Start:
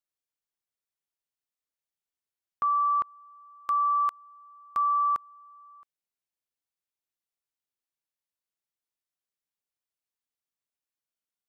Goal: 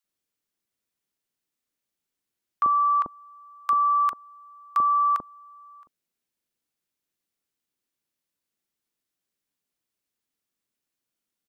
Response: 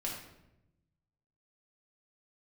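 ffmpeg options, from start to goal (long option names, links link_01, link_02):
-filter_complex "[0:a]equalizer=frequency=250:width_type=o:width=1.5:gain=7.5,acrossover=split=810[link_01][link_02];[link_01]adelay=40[link_03];[link_03][link_02]amix=inputs=2:normalize=0,volume=6.5dB"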